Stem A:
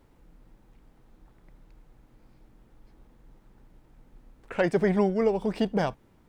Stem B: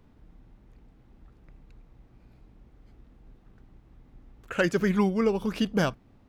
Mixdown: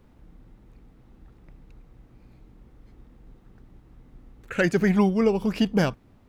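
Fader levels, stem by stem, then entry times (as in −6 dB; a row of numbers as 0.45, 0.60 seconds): −3.5, +1.0 decibels; 0.00, 0.00 seconds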